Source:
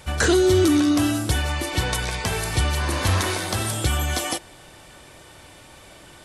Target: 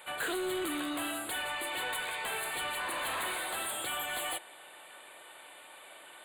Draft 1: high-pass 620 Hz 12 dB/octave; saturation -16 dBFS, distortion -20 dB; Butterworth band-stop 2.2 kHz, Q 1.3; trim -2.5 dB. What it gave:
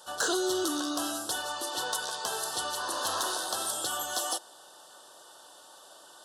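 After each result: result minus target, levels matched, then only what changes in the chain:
saturation: distortion -12 dB; 2 kHz band -5.5 dB
change: saturation -28 dBFS, distortion -9 dB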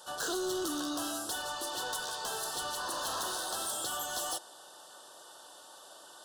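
2 kHz band -6.0 dB
change: Butterworth band-stop 5.6 kHz, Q 1.3

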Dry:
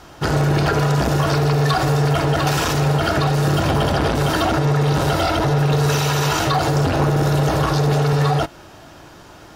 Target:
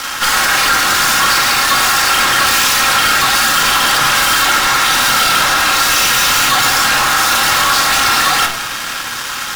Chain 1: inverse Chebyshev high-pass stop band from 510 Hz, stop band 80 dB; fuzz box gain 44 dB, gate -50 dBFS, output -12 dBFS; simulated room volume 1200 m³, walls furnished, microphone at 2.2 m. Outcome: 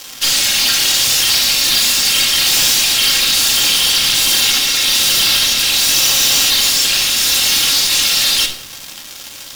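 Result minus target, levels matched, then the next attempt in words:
500 Hz band -7.5 dB
inverse Chebyshev high-pass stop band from 200 Hz, stop band 80 dB; fuzz box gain 44 dB, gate -50 dBFS, output -12 dBFS; simulated room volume 1200 m³, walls furnished, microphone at 2.2 m

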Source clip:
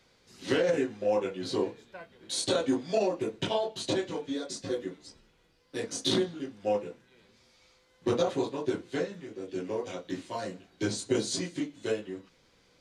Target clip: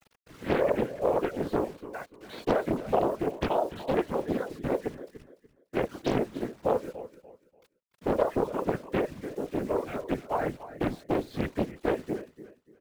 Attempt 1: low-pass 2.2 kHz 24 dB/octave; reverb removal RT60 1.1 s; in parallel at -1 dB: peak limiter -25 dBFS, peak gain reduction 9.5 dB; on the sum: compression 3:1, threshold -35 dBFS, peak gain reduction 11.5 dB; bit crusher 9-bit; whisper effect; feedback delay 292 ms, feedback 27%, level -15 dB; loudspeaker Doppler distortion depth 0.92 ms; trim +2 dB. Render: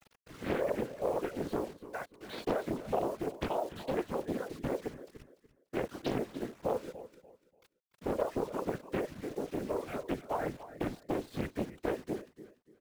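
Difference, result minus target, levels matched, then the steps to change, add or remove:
compression: peak gain reduction +7 dB
change: compression 3:1, threshold -24.5 dBFS, peak gain reduction 4.5 dB

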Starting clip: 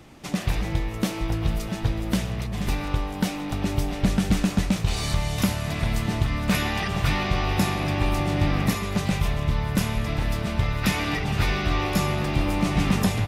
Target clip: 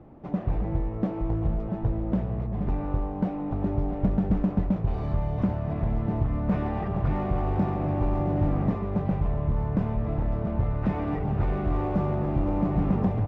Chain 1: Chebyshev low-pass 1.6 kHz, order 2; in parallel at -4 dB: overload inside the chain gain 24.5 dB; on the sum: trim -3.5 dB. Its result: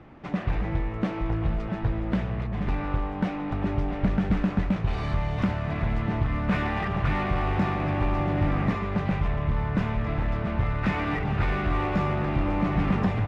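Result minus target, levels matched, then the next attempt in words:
2 kHz band +12.5 dB
Chebyshev low-pass 710 Hz, order 2; in parallel at -4 dB: overload inside the chain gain 24.5 dB; on the sum: trim -3.5 dB

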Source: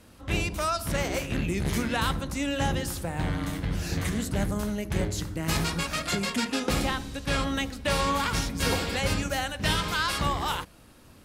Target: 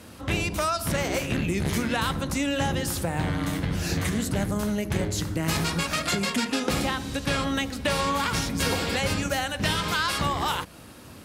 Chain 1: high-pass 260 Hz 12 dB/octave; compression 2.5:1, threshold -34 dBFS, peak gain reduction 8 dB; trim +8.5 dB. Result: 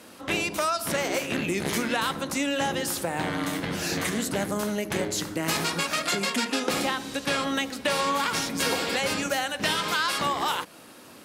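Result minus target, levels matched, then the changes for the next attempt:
125 Hz band -8.5 dB
change: high-pass 72 Hz 12 dB/octave

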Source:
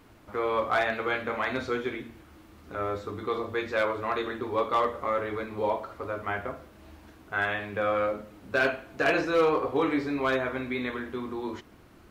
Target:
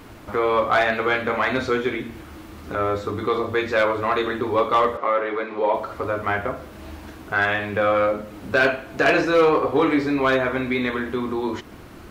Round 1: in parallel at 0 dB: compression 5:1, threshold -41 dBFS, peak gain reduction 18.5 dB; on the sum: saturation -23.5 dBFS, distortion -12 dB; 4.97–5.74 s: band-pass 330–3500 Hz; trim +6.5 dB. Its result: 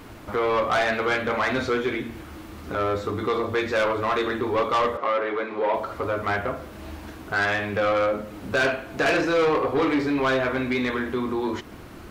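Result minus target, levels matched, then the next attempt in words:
saturation: distortion +14 dB
in parallel at 0 dB: compression 5:1, threshold -41 dBFS, peak gain reduction 18.5 dB; on the sum: saturation -13.5 dBFS, distortion -26 dB; 4.97–5.74 s: band-pass 330–3500 Hz; trim +6.5 dB

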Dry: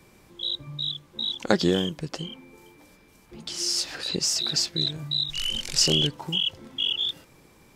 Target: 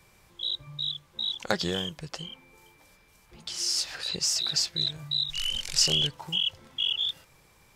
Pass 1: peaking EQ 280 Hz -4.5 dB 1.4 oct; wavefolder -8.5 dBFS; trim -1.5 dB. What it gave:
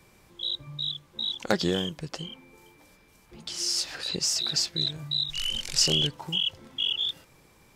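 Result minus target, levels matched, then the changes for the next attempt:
250 Hz band +5.0 dB
change: peaking EQ 280 Hz -12 dB 1.4 oct

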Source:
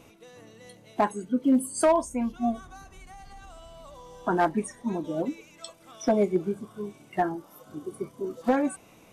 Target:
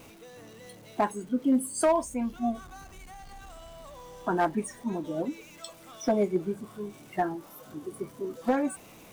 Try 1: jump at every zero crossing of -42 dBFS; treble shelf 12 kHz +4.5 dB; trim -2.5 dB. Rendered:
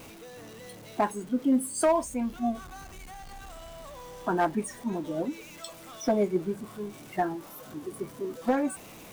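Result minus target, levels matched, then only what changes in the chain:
jump at every zero crossing: distortion +6 dB
change: jump at every zero crossing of -48 dBFS

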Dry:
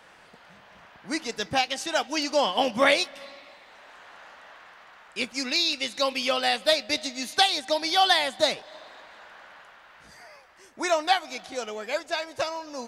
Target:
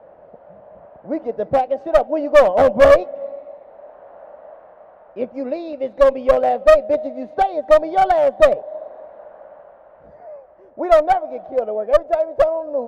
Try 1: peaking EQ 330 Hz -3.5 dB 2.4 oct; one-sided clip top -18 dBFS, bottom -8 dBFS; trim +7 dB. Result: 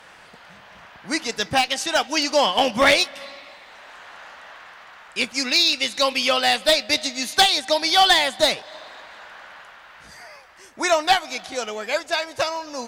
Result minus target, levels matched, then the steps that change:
500 Hz band -7.5 dB
add first: resonant low-pass 590 Hz, resonance Q 5.4

